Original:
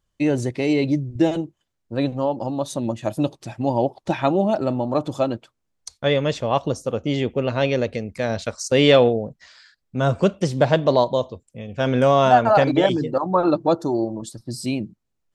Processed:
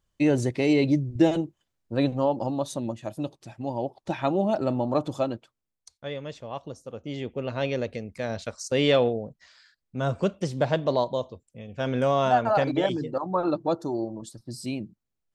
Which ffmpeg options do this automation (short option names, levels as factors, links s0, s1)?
-af "volume=4.73,afade=t=out:st=2.39:d=0.69:silence=0.398107,afade=t=in:st=3.81:d=1.06:silence=0.446684,afade=t=out:st=4.87:d=1.04:silence=0.237137,afade=t=in:st=6.85:d=0.82:silence=0.398107"